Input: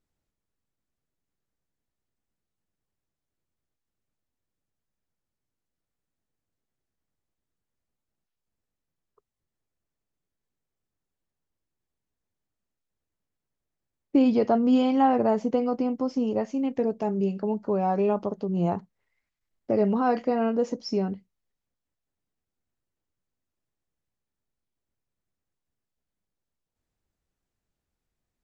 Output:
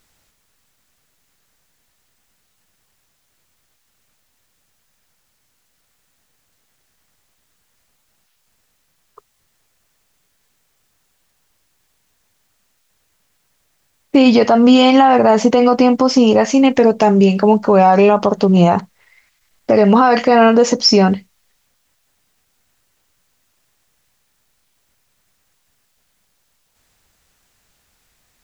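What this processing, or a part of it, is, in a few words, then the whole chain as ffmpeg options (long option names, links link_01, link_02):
mastering chain: -af "equalizer=frequency=340:width_type=o:width=0.66:gain=-3.5,acompressor=threshold=-25dB:ratio=2.5,tiltshelf=frequency=730:gain=-6,alimiter=level_in=23.5dB:limit=-1dB:release=50:level=0:latency=1,volume=-1dB"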